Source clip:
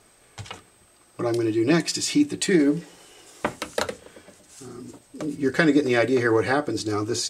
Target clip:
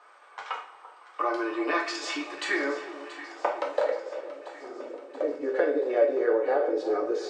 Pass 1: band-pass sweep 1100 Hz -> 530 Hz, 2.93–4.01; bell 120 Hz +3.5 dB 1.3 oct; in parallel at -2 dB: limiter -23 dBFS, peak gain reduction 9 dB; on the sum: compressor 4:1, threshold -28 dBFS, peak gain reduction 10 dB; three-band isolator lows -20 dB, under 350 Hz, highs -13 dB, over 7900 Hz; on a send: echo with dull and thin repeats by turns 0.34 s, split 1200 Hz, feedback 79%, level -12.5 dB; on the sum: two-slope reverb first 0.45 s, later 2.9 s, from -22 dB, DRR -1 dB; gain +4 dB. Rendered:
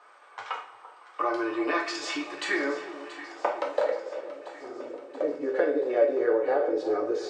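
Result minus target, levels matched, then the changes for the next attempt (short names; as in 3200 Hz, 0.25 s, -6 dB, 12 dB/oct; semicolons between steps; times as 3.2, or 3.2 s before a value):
125 Hz band +7.0 dB
change: bell 120 Hz -6.5 dB 1.3 oct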